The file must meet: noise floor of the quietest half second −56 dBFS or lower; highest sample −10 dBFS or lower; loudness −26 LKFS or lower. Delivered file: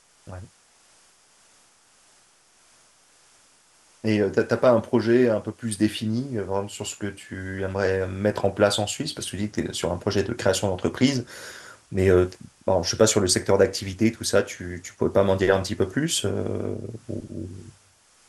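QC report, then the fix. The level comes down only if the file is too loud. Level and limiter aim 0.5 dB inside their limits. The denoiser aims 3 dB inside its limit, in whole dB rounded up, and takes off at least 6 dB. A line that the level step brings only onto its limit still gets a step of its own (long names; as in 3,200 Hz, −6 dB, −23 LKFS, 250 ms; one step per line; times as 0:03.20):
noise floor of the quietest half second −59 dBFS: in spec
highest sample −5.0 dBFS: out of spec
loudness −24.0 LKFS: out of spec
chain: level −2.5 dB
brickwall limiter −10.5 dBFS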